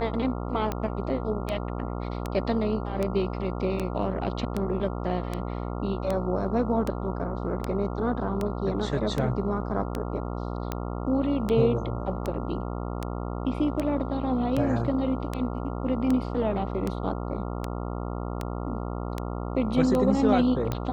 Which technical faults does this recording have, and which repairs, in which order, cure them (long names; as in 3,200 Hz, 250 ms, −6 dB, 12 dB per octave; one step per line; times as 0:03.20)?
mains buzz 60 Hz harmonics 23 −32 dBFS
scratch tick 78 rpm −15 dBFS
0:03.79: drop-out 4.8 ms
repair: click removal
hum removal 60 Hz, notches 23
repair the gap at 0:03.79, 4.8 ms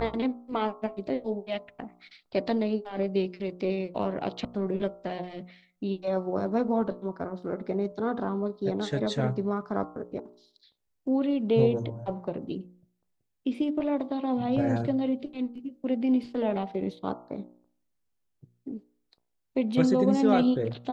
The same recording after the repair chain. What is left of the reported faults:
none of them is left